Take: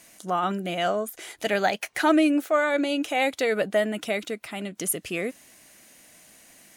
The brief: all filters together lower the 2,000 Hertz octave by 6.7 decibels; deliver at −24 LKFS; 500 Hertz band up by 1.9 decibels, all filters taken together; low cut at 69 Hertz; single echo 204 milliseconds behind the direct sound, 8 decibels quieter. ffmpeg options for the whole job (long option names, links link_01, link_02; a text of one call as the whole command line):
ffmpeg -i in.wav -af "highpass=69,equalizer=frequency=500:width_type=o:gain=3,equalizer=frequency=2000:width_type=o:gain=-9,aecho=1:1:204:0.398,volume=0.5dB" out.wav